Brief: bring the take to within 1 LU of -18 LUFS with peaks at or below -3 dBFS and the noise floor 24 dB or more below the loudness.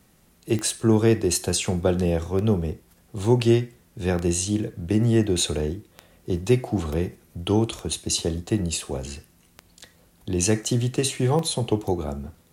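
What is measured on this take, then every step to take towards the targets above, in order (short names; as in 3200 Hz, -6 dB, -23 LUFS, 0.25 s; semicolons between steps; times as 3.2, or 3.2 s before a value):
clicks 7; loudness -24.0 LUFS; peak -6.5 dBFS; loudness target -18.0 LUFS
-> de-click; gain +6 dB; limiter -3 dBFS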